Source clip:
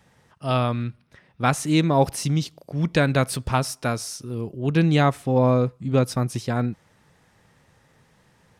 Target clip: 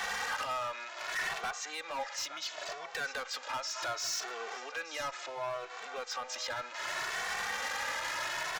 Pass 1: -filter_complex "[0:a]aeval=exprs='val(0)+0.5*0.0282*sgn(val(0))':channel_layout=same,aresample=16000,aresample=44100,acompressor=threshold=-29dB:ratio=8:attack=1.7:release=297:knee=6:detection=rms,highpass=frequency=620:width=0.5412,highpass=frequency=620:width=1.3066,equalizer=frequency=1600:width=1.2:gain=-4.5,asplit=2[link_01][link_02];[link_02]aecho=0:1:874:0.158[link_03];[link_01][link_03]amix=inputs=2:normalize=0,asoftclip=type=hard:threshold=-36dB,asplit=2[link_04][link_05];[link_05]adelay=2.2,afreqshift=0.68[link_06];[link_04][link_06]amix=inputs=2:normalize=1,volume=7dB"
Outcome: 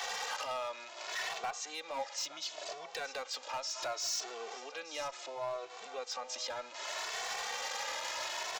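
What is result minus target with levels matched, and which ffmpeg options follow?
2,000 Hz band −4.0 dB
-filter_complex "[0:a]aeval=exprs='val(0)+0.5*0.0282*sgn(val(0))':channel_layout=same,aresample=16000,aresample=44100,acompressor=threshold=-29dB:ratio=8:attack=1.7:release=297:knee=6:detection=rms,highpass=frequency=620:width=0.5412,highpass=frequency=620:width=1.3066,equalizer=frequency=1600:width=1.2:gain=5.5,asplit=2[link_01][link_02];[link_02]aecho=0:1:874:0.158[link_03];[link_01][link_03]amix=inputs=2:normalize=0,asoftclip=type=hard:threshold=-36dB,asplit=2[link_04][link_05];[link_05]adelay=2.2,afreqshift=0.68[link_06];[link_04][link_06]amix=inputs=2:normalize=1,volume=7dB"

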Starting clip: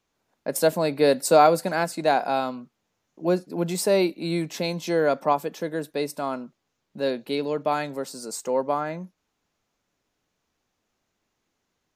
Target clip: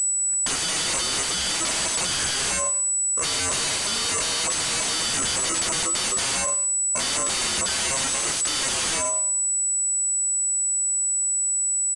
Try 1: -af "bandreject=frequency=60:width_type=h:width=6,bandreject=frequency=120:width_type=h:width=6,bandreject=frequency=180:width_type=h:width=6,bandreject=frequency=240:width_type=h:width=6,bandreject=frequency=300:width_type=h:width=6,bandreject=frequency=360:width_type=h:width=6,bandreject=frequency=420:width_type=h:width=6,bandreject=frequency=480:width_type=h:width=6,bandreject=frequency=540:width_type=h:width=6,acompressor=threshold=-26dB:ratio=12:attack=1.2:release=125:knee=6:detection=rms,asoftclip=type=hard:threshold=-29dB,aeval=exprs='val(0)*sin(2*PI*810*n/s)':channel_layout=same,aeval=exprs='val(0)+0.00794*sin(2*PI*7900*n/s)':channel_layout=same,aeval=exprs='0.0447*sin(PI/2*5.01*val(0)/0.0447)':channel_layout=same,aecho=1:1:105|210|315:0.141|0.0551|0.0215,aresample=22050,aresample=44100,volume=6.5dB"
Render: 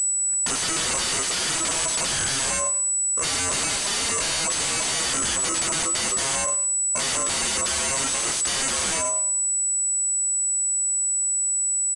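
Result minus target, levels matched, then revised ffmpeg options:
downward compressor: peak gain reduction +6.5 dB
-af "bandreject=frequency=60:width_type=h:width=6,bandreject=frequency=120:width_type=h:width=6,bandreject=frequency=180:width_type=h:width=6,bandreject=frequency=240:width_type=h:width=6,bandreject=frequency=300:width_type=h:width=6,bandreject=frequency=360:width_type=h:width=6,bandreject=frequency=420:width_type=h:width=6,bandreject=frequency=480:width_type=h:width=6,bandreject=frequency=540:width_type=h:width=6,acompressor=threshold=-19dB:ratio=12:attack=1.2:release=125:knee=6:detection=rms,asoftclip=type=hard:threshold=-29dB,aeval=exprs='val(0)*sin(2*PI*810*n/s)':channel_layout=same,aeval=exprs='val(0)+0.00794*sin(2*PI*7900*n/s)':channel_layout=same,aeval=exprs='0.0447*sin(PI/2*5.01*val(0)/0.0447)':channel_layout=same,aecho=1:1:105|210|315:0.141|0.0551|0.0215,aresample=22050,aresample=44100,volume=6.5dB"

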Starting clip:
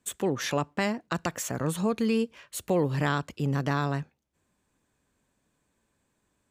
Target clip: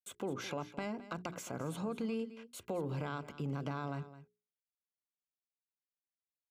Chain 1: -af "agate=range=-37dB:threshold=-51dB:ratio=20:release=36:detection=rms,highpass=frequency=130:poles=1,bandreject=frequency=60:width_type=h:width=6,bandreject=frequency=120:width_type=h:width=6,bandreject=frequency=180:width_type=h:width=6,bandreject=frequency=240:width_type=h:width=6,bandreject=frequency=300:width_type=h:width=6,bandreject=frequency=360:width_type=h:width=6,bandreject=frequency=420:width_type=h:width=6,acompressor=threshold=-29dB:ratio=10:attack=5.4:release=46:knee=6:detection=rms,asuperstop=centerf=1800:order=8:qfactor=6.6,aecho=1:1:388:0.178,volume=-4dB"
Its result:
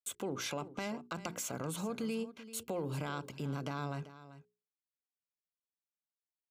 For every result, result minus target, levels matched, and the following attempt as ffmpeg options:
echo 175 ms late; 8,000 Hz band +7.5 dB
-af "agate=range=-37dB:threshold=-51dB:ratio=20:release=36:detection=rms,highpass=frequency=130:poles=1,bandreject=frequency=60:width_type=h:width=6,bandreject=frequency=120:width_type=h:width=6,bandreject=frequency=180:width_type=h:width=6,bandreject=frequency=240:width_type=h:width=6,bandreject=frequency=300:width_type=h:width=6,bandreject=frequency=360:width_type=h:width=6,bandreject=frequency=420:width_type=h:width=6,acompressor=threshold=-29dB:ratio=10:attack=5.4:release=46:knee=6:detection=rms,asuperstop=centerf=1800:order=8:qfactor=6.6,aecho=1:1:213:0.178,volume=-4dB"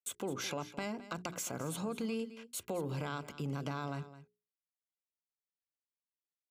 8,000 Hz band +7.5 dB
-af "agate=range=-37dB:threshold=-51dB:ratio=20:release=36:detection=rms,highpass=frequency=130:poles=1,bandreject=frequency=60:width_type=h:width=6,bandreject=frequency=120:width_type=h:width=6,bandreject=frequency=180:width_type=h:width=6,bandreject=frequency=240:width_type=h:width=6,bandreject=frequency=300:width_type=h:width=6,bandreject=frequency=360:width_type=h:width=6,bandreject=frequency=420:width_type=h:width=6,acompressor=threshold=-29dB:ratio=10:attack=5.4:release=46:knee=6:detection=rms,asuperstop=centerf=1800:order=8:qfactor=6.6,highshelf=frequency=3800:gain=-10.5,aecho=1:1:213:0.178,volume=-4dB"

